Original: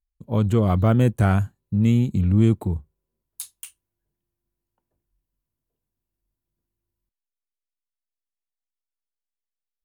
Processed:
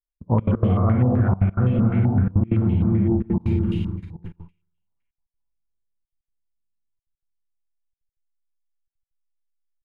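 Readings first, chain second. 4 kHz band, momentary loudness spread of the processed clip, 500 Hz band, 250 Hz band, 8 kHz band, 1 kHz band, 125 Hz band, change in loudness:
can't be measured, 8 LU, −0.5 dB, +1.5 dB, below −25 dB, −0.5 dB, +1.5 dB, 0.0 dB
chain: delay that plays each chunk backwards 446 ms, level −7 dB
on a send: multi-tap delay 52/124/621/627/775 ms −17.5/−18/−15/−9.5/−17.5 dB
on the sum: four-comb reverb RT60 1 s, combs from 32 ms, DRR −2.5 dB
noise gate −38 dBFS, range −31 dB
spectral tilt −3 dB per octave
gate pattern "xxxxx.x.xxxx" 191 BPM −24 dB
in parallel at −10 dB: hard clipping −8.5 dBFS, distortion −7 dB
on the sum: downward compressor 6 to 1, threshold −17 dBFS, peak gain reduction 17.5 dB
low-pass on a step sequencer 7.8 Hz 830–2,900 Hz

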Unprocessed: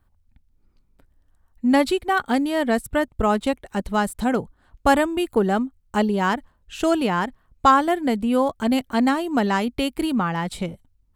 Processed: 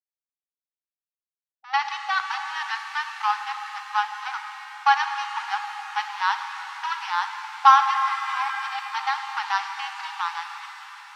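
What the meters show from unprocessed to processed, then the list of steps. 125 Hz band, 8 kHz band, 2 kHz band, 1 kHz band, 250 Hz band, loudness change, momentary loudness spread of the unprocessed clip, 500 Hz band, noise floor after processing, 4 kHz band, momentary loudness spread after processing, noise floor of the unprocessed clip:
below −40 dB, −6.0 dB, +1.0 dB, +1.0 dB, below −40 dB, −3.0 dB, 8 LU, below −40 dB, below −85 dBFS, 0.0 dB, 12 LU, −64 dBFS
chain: slack as between gear wheels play −17 dBFS
linear-phase brick-wall band-pass 780–6,100 Hz
reverb with rising layers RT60 3.9 s, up +7 semitones, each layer −8 dB, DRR 5.5 dB
level +3 dB

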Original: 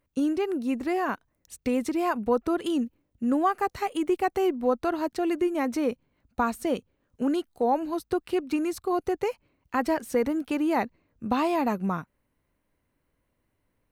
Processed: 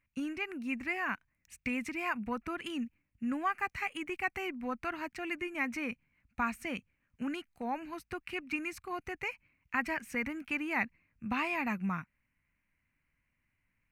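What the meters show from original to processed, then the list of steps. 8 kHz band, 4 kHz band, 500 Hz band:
−9.0 dB, −4.5 dB, −16.0 dB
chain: drawn EQ curve 210 Hz 0 dB, 440 Hz −14 dB, 1,300 Hz +1 dB, 2,400 Hz +13 dB, 3,500 Hz −6 dB, 6,300 Hz −2 dB, 10,000 Hz −5 dB
level −5.5 dB

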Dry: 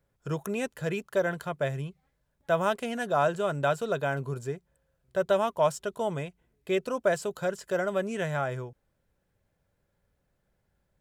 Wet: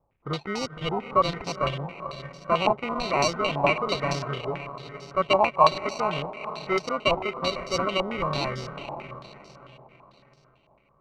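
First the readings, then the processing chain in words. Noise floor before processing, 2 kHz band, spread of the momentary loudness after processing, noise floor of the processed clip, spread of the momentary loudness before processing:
−76 dBFS, +3.5 dB, 15 LU, −63 dBFS, 11 LU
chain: feedback delay with all-pass diffusion 486 ms, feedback 42%, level −10 dB
decimation without filtering 26×
low-pass on a step sequencer 9 Hz 860–5,200 Hz

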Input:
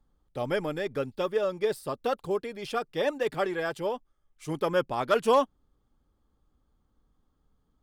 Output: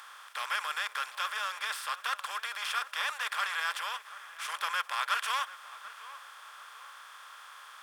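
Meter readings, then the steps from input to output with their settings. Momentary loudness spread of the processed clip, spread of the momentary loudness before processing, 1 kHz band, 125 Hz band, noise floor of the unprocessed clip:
17 LU, 10 LU, −1.5 dB, below −40 dB, −73 dBFS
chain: compressor on every frequency bin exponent 0.4
soft clipping −10.5 dBFS, distortion −23 dB
high-pass filter 1,300 Hz 24 dB per octave
on a send: tape delay 738 ms, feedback 49%, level −14.5 dB, low-pass 1,800 Hz

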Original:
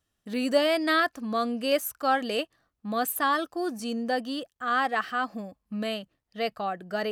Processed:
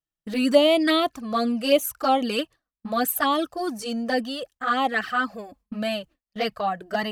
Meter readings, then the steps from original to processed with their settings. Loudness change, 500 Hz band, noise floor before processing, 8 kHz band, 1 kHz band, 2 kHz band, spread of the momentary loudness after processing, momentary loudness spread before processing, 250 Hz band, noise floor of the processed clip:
+4.0 dB, +5.0 dB, −81 dBFS, +4.0 dB, +3.0 dB, +1.0 dB, 12 LU, 11 LU, +5.5 dB, below −85 dBFS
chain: noise gate with hold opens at −44 dBFS
low-shelf EQ 71 Hz +5 dB
flanger swept by the level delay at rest 6.2 ms, full sweep at −21 dBFS
level +7.5 dB

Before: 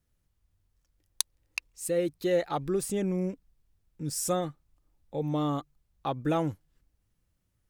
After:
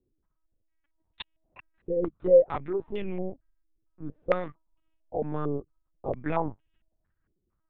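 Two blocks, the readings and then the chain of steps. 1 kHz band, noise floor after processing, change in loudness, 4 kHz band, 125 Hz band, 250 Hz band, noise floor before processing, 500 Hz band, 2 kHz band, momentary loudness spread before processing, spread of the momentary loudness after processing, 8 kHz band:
−0.5 dB, −78 dBFS, +2.5 dB, can't be measured, −4.0 dB, −3.5 dB, −76 dBFS, +5.0 dB, −1.5 dB, 10 LU, 23 LU, below −40 dB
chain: linear-prediction vocoder at 8 kHz pitch kept
low-pass on a step sequencer 4.4 Hz 390–2,800 Hz
level −2.5 dB

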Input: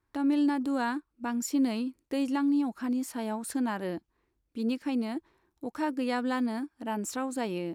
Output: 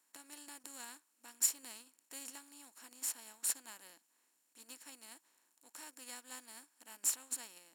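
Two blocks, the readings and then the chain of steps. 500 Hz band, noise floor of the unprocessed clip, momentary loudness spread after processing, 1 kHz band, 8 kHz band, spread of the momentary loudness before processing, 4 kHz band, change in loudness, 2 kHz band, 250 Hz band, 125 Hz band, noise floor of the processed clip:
−28.0 dB, −78 dBFS, 22 LU, −22.5 dB, +5.5 dB, 9 LU, −5.5 dB, −8.5 dB, −15.0 dB, −34.5 dB, below −35 dB, −78 dBFS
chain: compressor on every frequency bin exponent 0.4
first-order pre-emphasis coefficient 0.97
expander for the loud parts 2.5 to 1, over −48 dBFS
level +5 dB

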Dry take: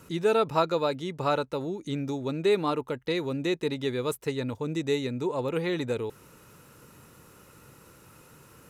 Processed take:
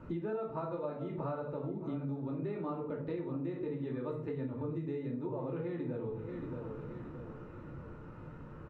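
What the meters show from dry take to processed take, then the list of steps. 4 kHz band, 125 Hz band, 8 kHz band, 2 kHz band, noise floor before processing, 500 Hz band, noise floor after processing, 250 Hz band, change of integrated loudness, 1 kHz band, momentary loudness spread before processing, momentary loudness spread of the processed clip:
below −25 dB, −4.5 dB, below −30 dB, −17.0 dB, −55 dBFS, −11.0 dB, −49 dBFS, −6.5 dB, −10.5 dB, −13.0 dB, 7 LU, 10 LU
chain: low-shelf EQ 140 Hz +7.5 dB
repeating echo 626 ms, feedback 45%, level −17.5 dB
rectangular room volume 410 cubic metres, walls furnished, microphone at 2.6 metres
downward compressor 10 to 1, threshold −33 dBFS, peak gain reduction 19.5 dB
low-pass filter 1,400 Hz 12 dB per octave
level −1.5 dB

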